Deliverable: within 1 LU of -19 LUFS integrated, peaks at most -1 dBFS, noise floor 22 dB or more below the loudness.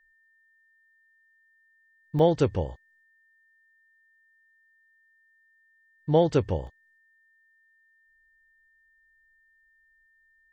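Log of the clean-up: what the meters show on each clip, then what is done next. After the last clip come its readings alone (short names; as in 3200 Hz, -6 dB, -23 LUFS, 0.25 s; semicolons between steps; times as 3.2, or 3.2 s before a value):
dropouts 2; longest dropout 1.5 ms; steady tone 1800 Hz; tone level -62 dBFS; loudness -25.5 LUFS; peak -10.5 dBFS; loudness target -19.0 LUFS
-> interpolate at 2.19/6.67, 1.5 ms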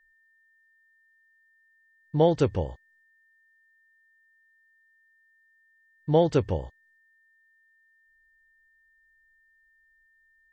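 dropouts 0; steady tone 1800 Hz; tone level -62 dBFS
-> notch 1800 Hz, Q 30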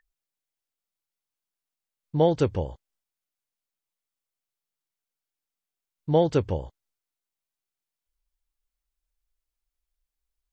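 steady tone none; loudness -25.0 LUFS; peak -10.5 dBFS; loudness target -19.0 LUFS
-> gain +6 dB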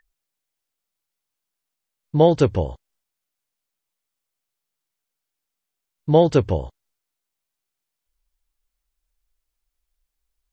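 loudness -19.0 LUFS; peak -4.5 dBFS; noise floor -83 dBFS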